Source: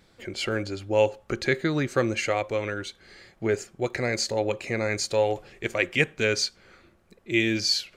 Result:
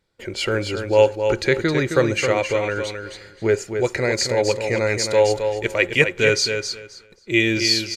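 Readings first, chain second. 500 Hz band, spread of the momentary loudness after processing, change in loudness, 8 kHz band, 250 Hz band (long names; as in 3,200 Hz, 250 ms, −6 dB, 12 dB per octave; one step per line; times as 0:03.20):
+7.5 dB, 10 LU, +6.5 dB, +6.0 dB, +4.5 dB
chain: downsampling to 32,000 Hz
noise gate −52 dBFS, range −18 dB
comb filter 2.1 ms, depth 32%
on a send: repeating echo 265 ms, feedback 19%, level −7 dB
on the sum: level +5 dB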